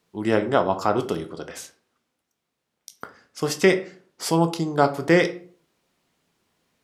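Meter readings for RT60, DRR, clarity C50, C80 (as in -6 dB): 0.45 s, 7.0 dB, 13.5 dB, 18.5 dB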